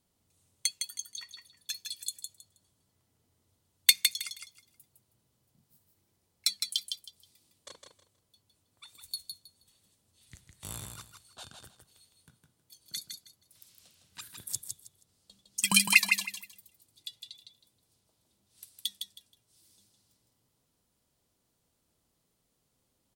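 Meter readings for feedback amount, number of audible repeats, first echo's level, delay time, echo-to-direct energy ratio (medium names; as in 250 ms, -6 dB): 22%, 3, -5.5 dB, 159 ms, -5.5 dB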